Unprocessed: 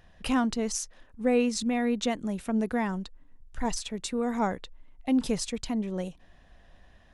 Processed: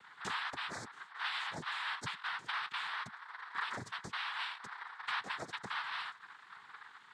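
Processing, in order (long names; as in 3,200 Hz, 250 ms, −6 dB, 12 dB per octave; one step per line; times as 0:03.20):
band-splitting scrambler in four parts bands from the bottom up 4123
spectral tilt −4.5 dB per octave
downward compressor 6 to 1, threshold −39 dBFS, peak gain reduction 15.5 dB
cochlear-implant simulation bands 6
delay with a high-pass on its return 227 ms, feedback 78%, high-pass 5,300 Hz, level −23 dB
level +2 dB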